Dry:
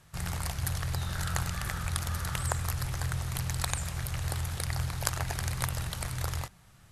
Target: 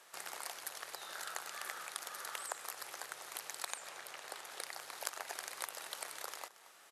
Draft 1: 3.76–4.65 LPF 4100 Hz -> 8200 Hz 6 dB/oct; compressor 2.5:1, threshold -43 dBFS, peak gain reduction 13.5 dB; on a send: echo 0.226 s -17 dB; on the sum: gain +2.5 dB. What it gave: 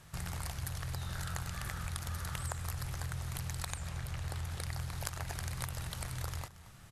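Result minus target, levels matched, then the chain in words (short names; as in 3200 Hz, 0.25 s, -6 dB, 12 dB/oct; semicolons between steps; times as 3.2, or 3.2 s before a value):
500 Hz band -3.5 dB
3.76–4.65 LPF 4100 Hz -> 8200 Hz 6 dB/oct; compressor 2.5:1, threshold -43 dBFS, peak gain reduction 13.5 dB; HPF 390 Hz 24 dB/oct; on a send: echo 0.226 s -17 dB; on the sum: gain +2.5 dB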